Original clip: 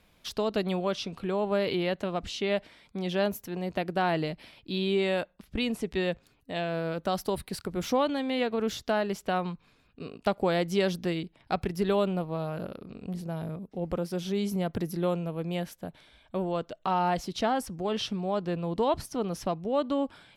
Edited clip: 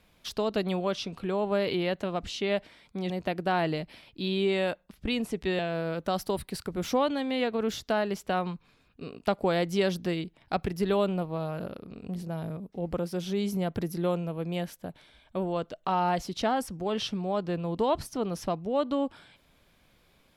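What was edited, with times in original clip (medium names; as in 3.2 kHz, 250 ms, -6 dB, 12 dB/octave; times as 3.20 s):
3.10–3.60 s: delete
6.09–6.58 s: delete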